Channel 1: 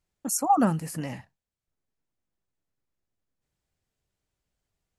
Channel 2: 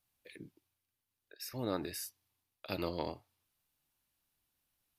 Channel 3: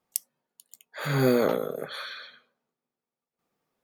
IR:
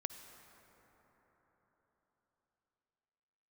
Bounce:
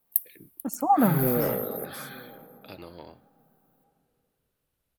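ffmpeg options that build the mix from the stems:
-filter_complex "[0:a]lowpass=frequency=1600:poles=1,adelay=400,volume=-2.5dB,asplit=2[link_01][link_02];[link_02]volume=-3dB[link_03];[1:a]acompressor=threshold=-40dB:ratio=3,volume=-1dB[link_04];[2:a]asoftclip=type=tanh:threshold=-18.5dB,aexciter=amount=14.5:drive=9.1:freq=10000,highshelf=frequency=2600:gain=-12,volume=-2.5dB,asplit=3[link_05][link_06][link_07];[link_06]volume=-10.5dB[link_08];[link_07]volume=-22dB[link_09];[3:a]atrim=start_sample=2205[link_10];[link_03][link_08]amix=inputs=2:normalize=0[link_11];[link_11][link_10]afir=irnorm=-1:irlink=0[link_12];[link_09]aecho=0:1:901:1[link_13];[link_01][link_04][link_05][link_12][link_13]amix=inputs=5:normalize=0,equalizer=frequency=5600:width=2.2:gain=-3"

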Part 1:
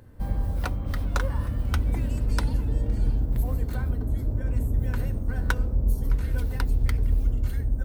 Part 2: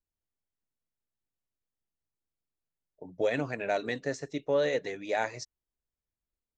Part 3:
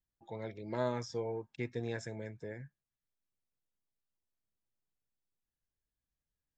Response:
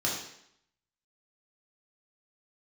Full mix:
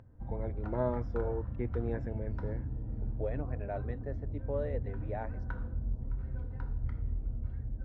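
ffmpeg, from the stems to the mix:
-filter_complex "[0:a]volume=-14.5dB,asplit=2[link_01][link_02];[link_02]volume=-10dB[link_03];[1:a]volume=-8.5dB[link_04];[2:a]volume=2.5dB[link_05];[3:a]atrim=start_sample=2205[link_06];[link_03][link_06]afir=irnorm=-1:irlink=0[link_07];[link_01][link_04][link_05][link_07]amix=inputs=4:normalize=0,lowpass=1100,acompressor=mode=upward:threshold=-51dB:ratio=2.5"

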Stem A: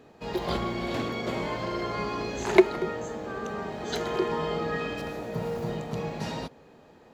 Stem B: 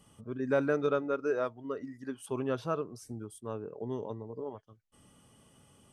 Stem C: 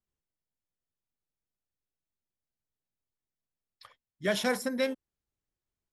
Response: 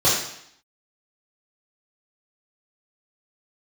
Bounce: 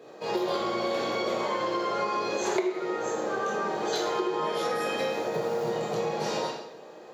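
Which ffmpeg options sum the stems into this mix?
-filter_complex "[0:a]volume=-1dB,asplit=2[link_01][link_02];[link_02]volume=-11dB[link_03];[2:a]acompressor=threshold=-34dB:ratio=6,adelay=200,volume=0.5dB,asplit=2[link_04][link_05];[link_05]volume=-13dB[link_06];[3:a]atrim=start_sample=2205[link_07];[link_03][link_06]amix=inputs=2:normalize=0[link_08];[link_08][link_07]afir=irnorm=-1:irlink=0[link_09];[link_01][link_04][link_09]amix=inputs=3:normalize=0,highpass=350,acompressor=threshold=-25dB:ratio=8"

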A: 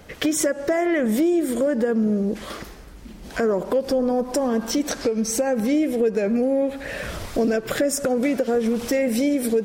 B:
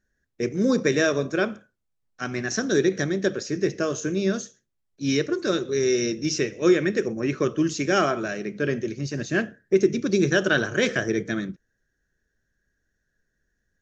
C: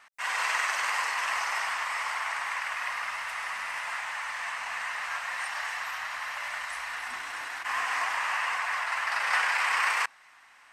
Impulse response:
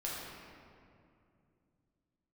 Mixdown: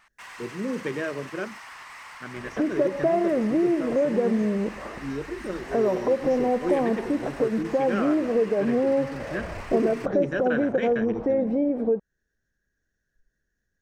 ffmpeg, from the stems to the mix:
-filter_complex "[0:a]lowpass=frequency=860:width_type=q:width=1.7,adelay=2350,volume=-4dB[link_01];[1:a]acompressor=mode=upward:threshold=-34dB:ratio=2.5,afwtdn=0.0355,volume=-8.5dB[link_02];[2:a]acompressor=threshold=-34dB:ratio=6,volume=35.5dB,asoftclip=hard,volume=-35.5dB,volume=-4dB[link_03];[link_01][link_02][link_03]amix=inputs=3:normalize=0"

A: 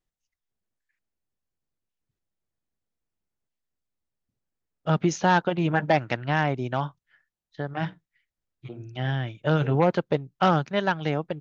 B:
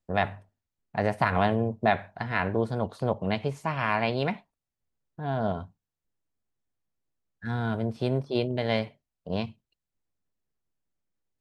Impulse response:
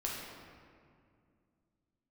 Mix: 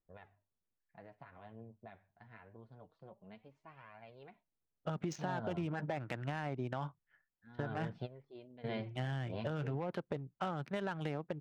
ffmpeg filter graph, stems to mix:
-filter_complex "[0:a]alimiter=limit=-18dB:level=0:latency=1:release=30,adynamicsmooth=sensitivity=6:basefreq=2000,volume=-5dB,asplit=2[link_01][link_02];[1:a]lowpass=3300,alimiter=limit=-16.5dB:level=0:latency=1:release=449,flanger=delay=1.2:depth=9.6:regen=28:speed=0.25:shape=triangular,volume=-7dB[link_03];[link_02]apad=whole_len=502926[link_04];[link_03][link_04]sidechaingate=range=-15dB:threshold=-57dB:ratio=16:detection=peak[link_05];[link_01][link_05]amix=inputs=2:normalize=0,acompressor=threshold=-34dB:ratio=6"

